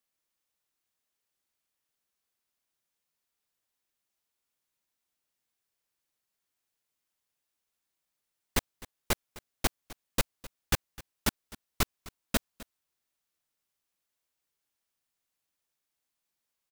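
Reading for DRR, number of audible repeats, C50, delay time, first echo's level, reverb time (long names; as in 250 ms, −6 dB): no reverb audible, 1, no reverb audible, 257 ms, −19.5 dB, no reverb audible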